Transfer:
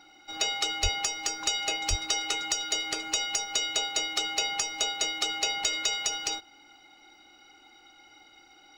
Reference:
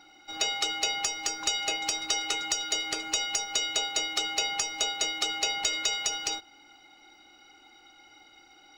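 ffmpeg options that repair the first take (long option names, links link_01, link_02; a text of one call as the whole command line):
ffmpeg -i in.wav -filter_complex "[0:a]asplit=3[link_01][link_02][link_03];[link_01]afade=type=out:start_time=0.82:duration=0.02[link_04];[link_02]highpass=frequency=140:width=0.5412,highpass=frequency=140:width=1.3066,afade=type=in:start_time=0.82:duration=0.02,afade=type=out:start_time=0.94:duration=0.02[link_05];[link_03]afade=type=in:start_time=0.94:duration=0.02[link_06];[link_04][link_05][link_06]amix=inputs=3:normalize=0,asplit=3[link_07][link_08][link_09];[link_07]afade=type=out:start_time=1.89:duration=0.02[link_10];[link_08]highpass=frequency=140:width=0.5412,highpass=frequency=140:width=1.3066,afade=type=in:start_time=1.89:duration=0.02,afade=type=out:start_time=2.01:duration=0.02[link_11];[link_09]afade=type=in:start_time=2.01:duration=0.02[link_12];[link_10][link_11][link_12]amix=inputs=3:normalize=0" out.wav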